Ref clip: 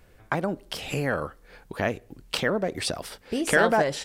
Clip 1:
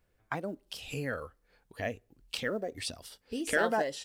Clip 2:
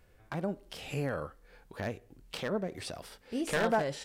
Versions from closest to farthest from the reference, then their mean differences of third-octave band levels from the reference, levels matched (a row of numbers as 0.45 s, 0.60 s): 2, 1; 2.0 dB, 4.5 dB